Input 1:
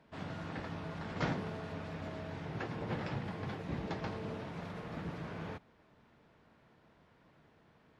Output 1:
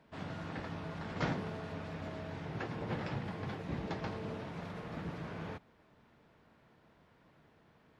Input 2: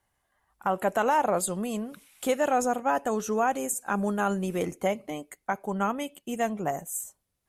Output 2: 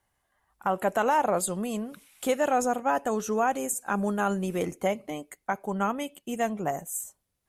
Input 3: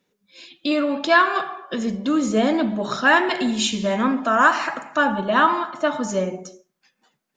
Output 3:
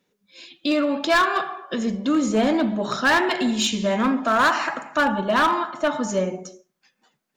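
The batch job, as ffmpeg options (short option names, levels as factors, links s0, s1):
-af "volume=5.01,asoftclip=hard,volume=0.2"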